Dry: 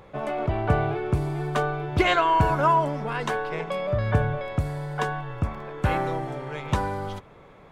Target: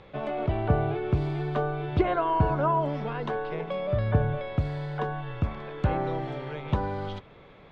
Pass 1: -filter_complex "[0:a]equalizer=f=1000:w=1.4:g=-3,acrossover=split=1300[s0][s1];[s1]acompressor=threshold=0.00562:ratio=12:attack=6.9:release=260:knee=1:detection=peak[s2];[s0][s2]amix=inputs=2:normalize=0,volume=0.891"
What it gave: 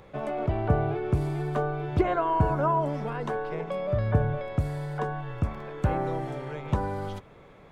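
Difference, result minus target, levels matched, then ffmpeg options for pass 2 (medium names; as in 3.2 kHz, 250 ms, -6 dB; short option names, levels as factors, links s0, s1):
4 kHz band -4.0 dB
-filter_complex "[0:a]equalizer=f=1000:w=1.4:g=-3,acrossover=split=1300[s0][s1];[s1]acompressor=threshold=0.00562:ratio=12:attack=6.9:release=260:knee=1:detection=peak,lowpass=f=3700:t=q:w=1.7[s2];[s0][s2]amix=inputs=2:normalize=0,volume=0.891"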